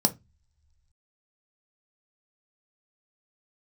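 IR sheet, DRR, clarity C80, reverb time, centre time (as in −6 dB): 6.5 dB, 29.0 dB, non-exponential decay, 5 ms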